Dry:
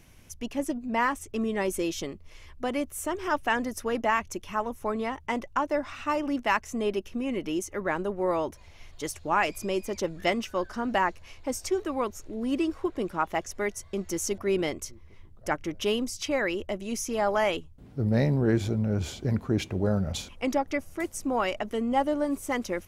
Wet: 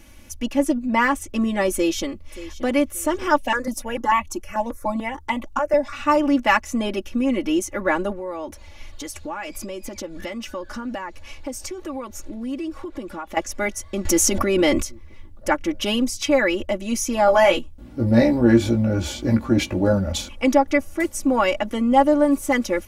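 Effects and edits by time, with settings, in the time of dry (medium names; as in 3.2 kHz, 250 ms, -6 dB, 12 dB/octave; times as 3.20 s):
1.74–2.65 s: echo throw 580 ms, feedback 30%, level -16 dB
3.38–5.93 s: stepped phaser 6.8 Hz 350–1500 Hz
8.12–13.37 s: compression 5:1, threshold -36 dBFS
14.05–14.82 s: level flattener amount 70%
17.26–19.93 s: doubling 17 ms -4.5 dB
whole clip: comb 3.5 ms, depth 80%; trim +5.5 dB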